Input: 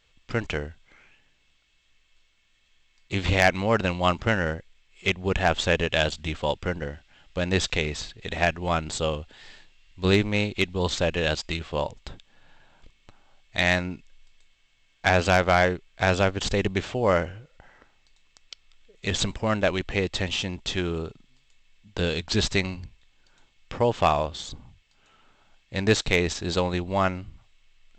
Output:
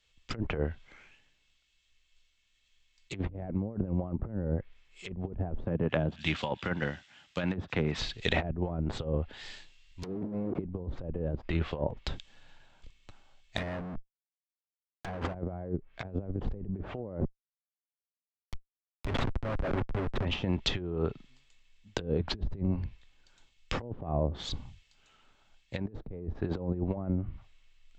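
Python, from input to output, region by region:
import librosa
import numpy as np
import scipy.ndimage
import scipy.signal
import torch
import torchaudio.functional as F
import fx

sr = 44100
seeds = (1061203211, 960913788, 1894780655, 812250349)

y = fx.chain(x, sr, fx.highpass(hz=130.0, slope=12),
    fx.peak_eq(hz=460.0, db=-7.5, octaves=1.2),
    fx.echo_wet_highpass(ms=87, feedback_pct=69, hz=4900.0, wet_db=-11.5), at=(5.64, 7.98))
y = fx.chain(y, sr, fx.clip_1bit(),
    fx.highpass(hz=160.0, slope=12), at=(10.03, 10.59))
y = fx.chain(y, sr, fx.high_shelf(hz=6500.0, db=7.0),
    fx.schmitt(flips_db=-36.0), at=(13.57, 15.34))
y = fx.chain(y, sr, fx.comb(ms=7.4, depth=0.79),
    fx.schmitt(flips_db=-25.0), at=(17.2, 20.25))
y = fx.env_lowpass_down(y, sr, base_hz=370.0, full_db=-21.5)
y = fx.over_compress(y, sr, threshold_db=-31.0, ratio=-0.5)
y = fx.band_widen(y, sr, depth_pct=40)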